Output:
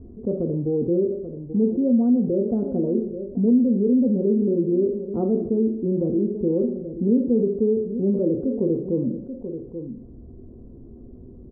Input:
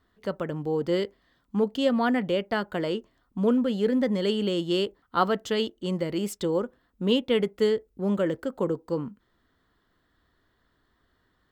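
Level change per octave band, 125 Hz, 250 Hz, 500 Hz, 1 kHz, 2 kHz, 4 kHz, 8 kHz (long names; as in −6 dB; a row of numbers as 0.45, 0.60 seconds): +6.0 dB, +7.5 dB, +3.5 dB, −13.5 dB, below −40 dB, below −40 dB, below −30 dB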